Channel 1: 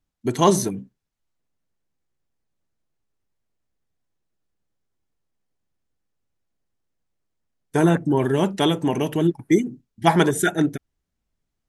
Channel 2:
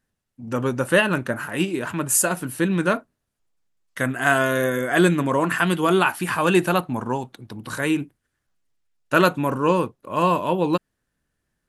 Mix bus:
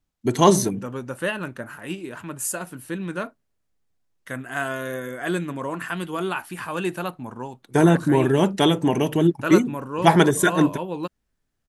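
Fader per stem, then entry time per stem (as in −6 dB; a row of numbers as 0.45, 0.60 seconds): +1.5, −8.5 decibels; 0.00, 0.30 seconds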